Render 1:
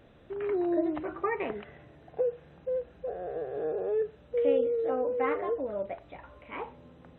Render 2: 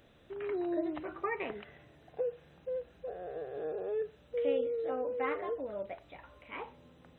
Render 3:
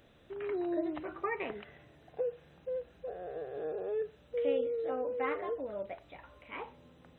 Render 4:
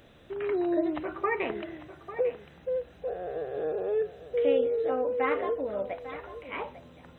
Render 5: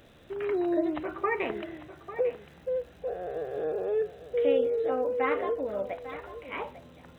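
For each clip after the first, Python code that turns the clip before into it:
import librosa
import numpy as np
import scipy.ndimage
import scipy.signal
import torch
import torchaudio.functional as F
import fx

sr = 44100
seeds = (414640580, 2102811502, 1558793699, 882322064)

y1 = fx.high_shelf(x, sr, hz=2900.0, db=12.0)
y1 = F.gain(torch.from_numpy(y1), -6.0).numpy()
y2 = y1
y3 = y2 + 10.0 ** (-13.5 / 20.0) * np.pad(y2, (int(848 * sr / 1000.0), 0))[:len(y2)]
y3 = F.gain(torch.from_numpy(y3), 6.5).numpy()
y4 = fx.dmg_crackle(y3, sr, seeds[0], per_s=170.0, level_db=-52.0)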